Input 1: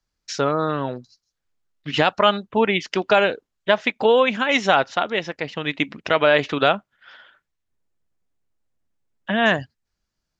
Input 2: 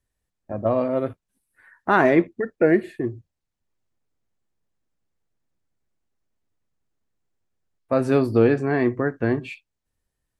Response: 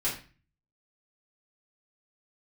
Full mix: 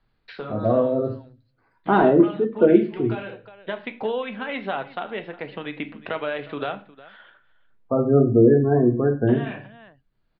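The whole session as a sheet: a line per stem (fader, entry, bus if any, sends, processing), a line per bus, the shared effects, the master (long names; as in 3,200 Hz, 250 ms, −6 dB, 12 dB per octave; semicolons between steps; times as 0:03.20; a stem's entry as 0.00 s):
−11.0 dB, 0.00 s, send −13 dB, echo send −17.5 dB, Butterworth low-pass 4,400 Hz 72 dB per octave; multiband upward and downward compressor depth 70%; automatic ducking −11 dB, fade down 0.30 s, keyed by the second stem
−1.5 dB, 0.00 s, send −6 dB, no echo send, running median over 25 samples; gate on every frequency bin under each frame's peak −20 dB strong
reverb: on, RT60 0.35 s, pre-delay 3 ms
echo: single-tap delay 360 ms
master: high-shelf EQ 2,900 Hz −9.5 dB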